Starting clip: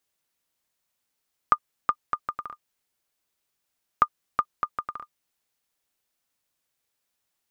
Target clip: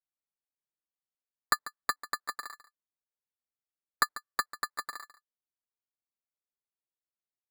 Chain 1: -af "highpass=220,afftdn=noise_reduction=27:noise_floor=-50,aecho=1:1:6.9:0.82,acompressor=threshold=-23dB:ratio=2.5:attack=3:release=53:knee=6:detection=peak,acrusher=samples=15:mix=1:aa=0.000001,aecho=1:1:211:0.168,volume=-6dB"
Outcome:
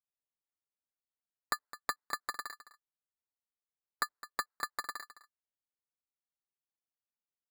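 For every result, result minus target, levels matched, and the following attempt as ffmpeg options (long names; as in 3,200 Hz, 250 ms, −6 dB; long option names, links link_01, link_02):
echo 68 ms late; downward compressor: peak gain reduction +7.5 dB
-af "highpass=220,afftdn=noise_reduction=27:noise_floor=-50,aecho=1:1:6.9:0.82,acompressor=threshold=-23dB:ratio=2.5:attack=3:release=53:knee=6:detection=peak,acrusher=samples=15:mix=1:aa=0.000001,aecho=1:1:143:0.168,volume=-6dB"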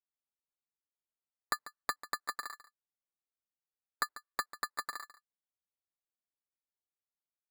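downward compressor: peak gain reduction +7.5 dB
-af "highpass=220,afftdn=noise_reduction=27:noise_floor=-50,aecho=1:1:6.9:0.82,acrusher=samples=15:mix=1:aa=0.000001,aecho=1:1:143:0.168,volume=-6dB"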